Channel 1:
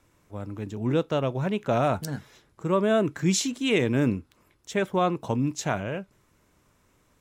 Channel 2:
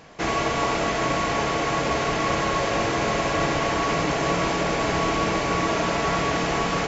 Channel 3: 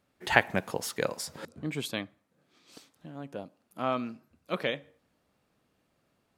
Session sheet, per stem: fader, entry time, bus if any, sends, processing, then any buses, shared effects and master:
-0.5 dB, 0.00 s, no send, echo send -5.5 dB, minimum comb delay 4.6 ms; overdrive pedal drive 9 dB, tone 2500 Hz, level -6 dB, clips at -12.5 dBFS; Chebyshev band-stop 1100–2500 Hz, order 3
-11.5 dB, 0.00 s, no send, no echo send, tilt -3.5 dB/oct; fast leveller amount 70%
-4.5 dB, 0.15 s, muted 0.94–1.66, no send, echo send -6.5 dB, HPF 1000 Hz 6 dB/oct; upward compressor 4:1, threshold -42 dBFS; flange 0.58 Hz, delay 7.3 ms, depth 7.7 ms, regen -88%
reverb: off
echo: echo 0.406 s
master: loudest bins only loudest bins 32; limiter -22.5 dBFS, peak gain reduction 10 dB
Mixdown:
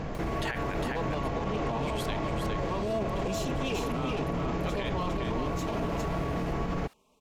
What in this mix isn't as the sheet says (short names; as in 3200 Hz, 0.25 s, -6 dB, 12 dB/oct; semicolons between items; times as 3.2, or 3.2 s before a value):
stem 3 -4.5 dB -> +6.0 dB; master: missing loudest bins only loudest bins 32